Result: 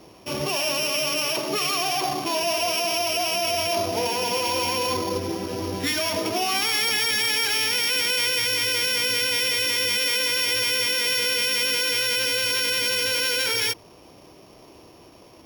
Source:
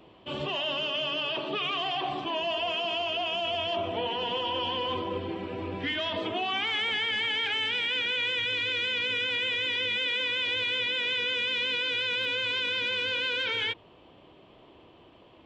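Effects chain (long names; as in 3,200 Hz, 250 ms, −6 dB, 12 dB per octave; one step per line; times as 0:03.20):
samples sorted by size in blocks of 8 samples
level +6 dB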